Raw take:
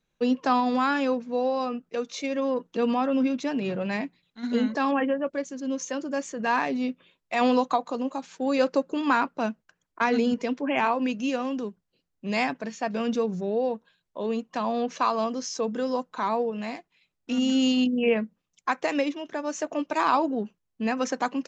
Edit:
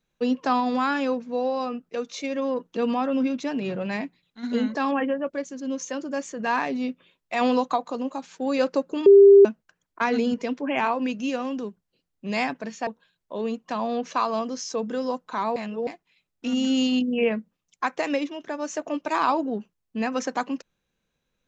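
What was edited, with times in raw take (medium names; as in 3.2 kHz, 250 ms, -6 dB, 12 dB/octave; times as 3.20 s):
9.06–9.45 s: bleep 398 Hz -7.5 dBFS
12.87–13.72 s: delete
16.41–16.72 s: reverse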